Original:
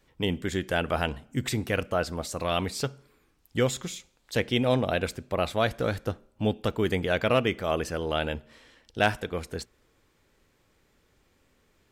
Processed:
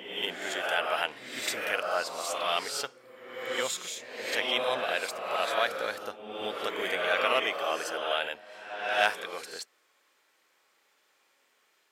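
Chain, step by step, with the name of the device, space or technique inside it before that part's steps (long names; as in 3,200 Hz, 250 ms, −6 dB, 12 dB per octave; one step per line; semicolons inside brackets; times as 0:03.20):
ghost voice (reversed playback; convolution reverb RT60 1.4 s, pre-delay 26 ms, DRR 0.5 dB; reversed playback; high-pass filter 770 Hz 12 dB per octave)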